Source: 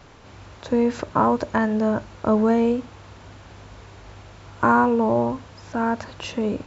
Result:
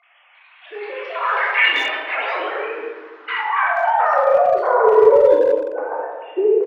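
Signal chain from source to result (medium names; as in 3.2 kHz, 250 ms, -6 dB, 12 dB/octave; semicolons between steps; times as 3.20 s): formants replaced by sine waves; simulated room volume 820 m³, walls mixed, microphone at 3.4 m; ever faster or slower copies 322 ms, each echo +4 st, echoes 3; band-pass sweep 2.5 kHz -> 480 Hz, 2.39–4.69 s; speakerphone echo 180 ms, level -10 dB; trim +3 dB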